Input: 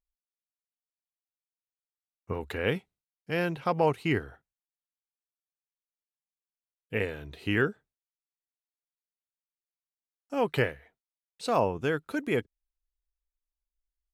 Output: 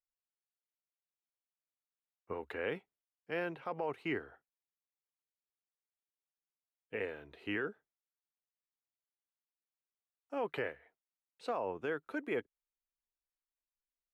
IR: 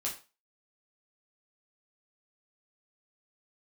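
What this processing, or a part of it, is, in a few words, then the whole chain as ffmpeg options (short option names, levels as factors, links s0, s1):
DJ mixer with the lows and highs turned down: -filter_complex "[0:a]acrossover=split=270 2900:gain=0.2 1 0.2[s0][s1][s2];[s0][s1][s2]amix=inputs=3:normalize=0,alimiter=limit=0.0841:level=0:latency=1:release=32,volume=0.562"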